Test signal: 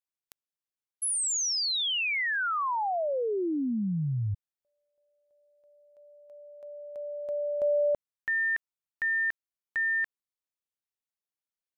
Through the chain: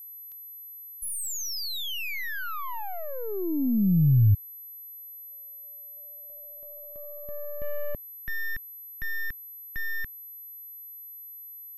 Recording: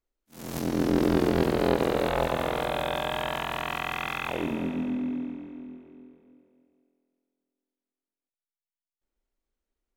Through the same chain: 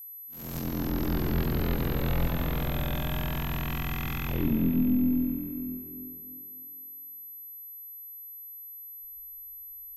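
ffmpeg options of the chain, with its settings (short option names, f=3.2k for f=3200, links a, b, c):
-af "aeval=exprs='(tanh(17.8*val(0)+0.25)-tanh(0.25))/17.8':c=same,aeval=exprs='val(0)+0.0126*sin(2*PI*12000*n/s)':c=same,asubboost=boost=9.5:cutoff=210,volume=-3dB"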